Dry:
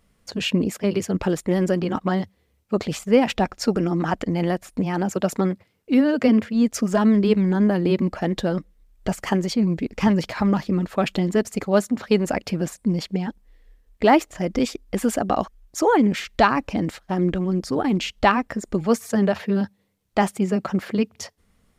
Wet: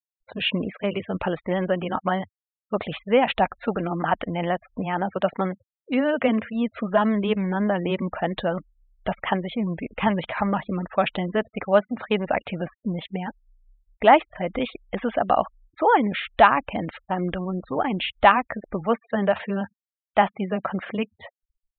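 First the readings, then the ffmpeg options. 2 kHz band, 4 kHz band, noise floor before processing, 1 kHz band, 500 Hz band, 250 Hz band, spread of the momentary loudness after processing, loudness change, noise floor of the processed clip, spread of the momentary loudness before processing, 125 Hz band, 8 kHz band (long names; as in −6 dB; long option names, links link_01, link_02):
+2.0 dB, −0.5 dB, −65 dBFS, +3.0 dB, −1.0 dB, −6.0 dB, 11 LU, −2.0 dB, below −85 dBFS, 9 LU, −6.0 dB, below −40 dB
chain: -af "afftfilt=real='re*gte(hypot(re,im),0.0126)':imag='im*gte(hypot(re,im),0.0126)':win_size=1024:overlap=0.75,aresample=8000,aresample=44100,lowshelf=frequency=490:width_type=q:width=1.5:gain=-6.5,volume=1.5dB"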